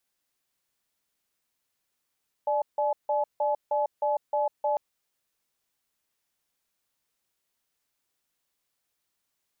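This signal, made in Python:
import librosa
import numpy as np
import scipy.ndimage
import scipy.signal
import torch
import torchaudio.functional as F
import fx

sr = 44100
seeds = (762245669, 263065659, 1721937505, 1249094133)

y = fx.cadence(sr, length_s=2.3, low_hz=591.0, high_hz=853.0, on_s=0.15, off_s=0.16, level_db=-25.5)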